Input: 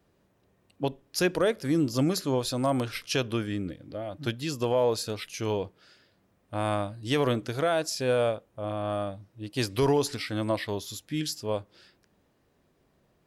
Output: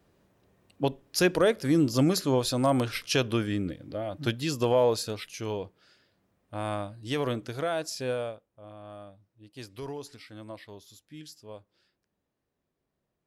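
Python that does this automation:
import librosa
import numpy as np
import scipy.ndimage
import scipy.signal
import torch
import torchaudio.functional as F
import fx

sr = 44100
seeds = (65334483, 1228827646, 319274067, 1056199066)

y = fx.gain(x, sr, db=fx.line((4.77, 2.0), (5.49, -4.0), (8.06, -4.0), (8.49, -14.5)))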